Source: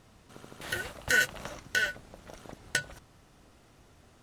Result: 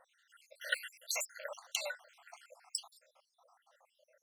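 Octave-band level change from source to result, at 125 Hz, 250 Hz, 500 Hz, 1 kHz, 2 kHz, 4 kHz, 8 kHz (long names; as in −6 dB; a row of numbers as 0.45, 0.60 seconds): below −40 dB, below −40 dB, −6.5 dB, −9.5 dB, −13.5 dB, −4.5 dB, −2.5 dB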